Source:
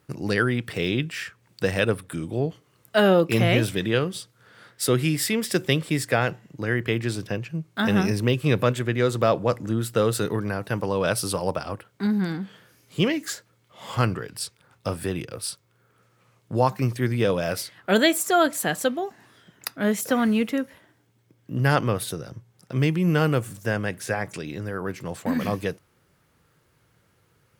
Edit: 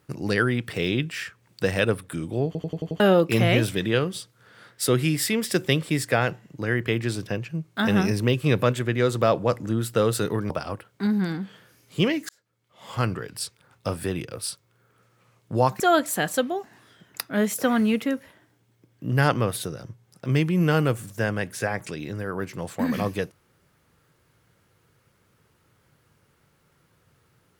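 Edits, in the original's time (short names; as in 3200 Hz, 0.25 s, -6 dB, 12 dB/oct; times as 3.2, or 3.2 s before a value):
2.46 stutter in place 0.09 s, 6 plays
10.5–11.5 cut
13.29–14.28 fade in
16.8–18.27 cut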